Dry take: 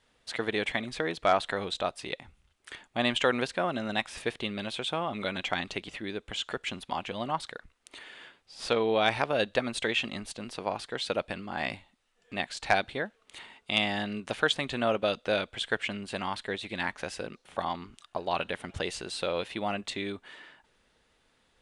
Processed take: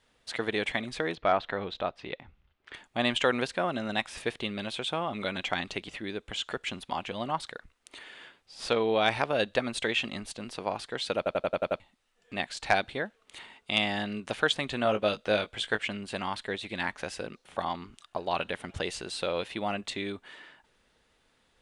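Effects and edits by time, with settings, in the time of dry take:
0:01.15–0:02.74: high-frequency loss of the air 230 metres
0:11.17: stutter in place 0.09 s, 7 plays
0:14.83–0:15.80: double-tracking delay 19 ms −8.5 dB

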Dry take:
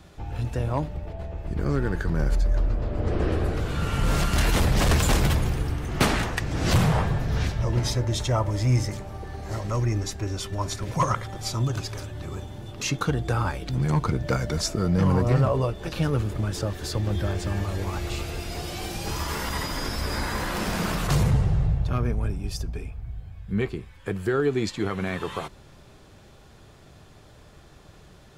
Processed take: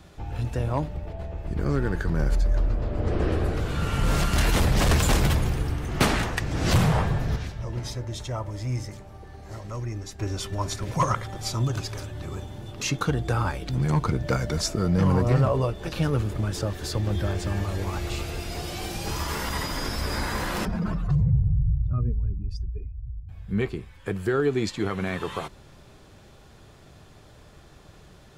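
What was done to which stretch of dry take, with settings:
0:07.36–0:10.19: clip gain −7.5 dB
0:20.65–0:23.29: expanding power law on the bin magnitudes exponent 2

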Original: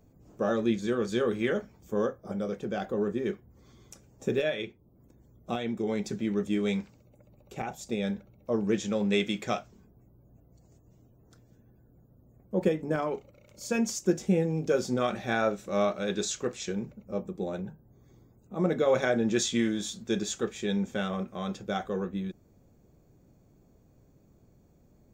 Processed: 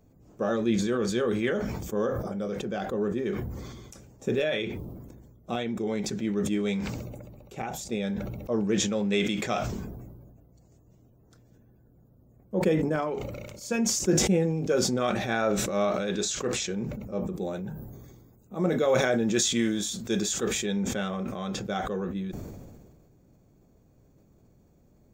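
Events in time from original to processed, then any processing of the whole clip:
0:17.36–0:20.66: high-shelf EQ 8,000 Hz +10 dB
whole clip: level that may fall only so fast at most 33 dB per second

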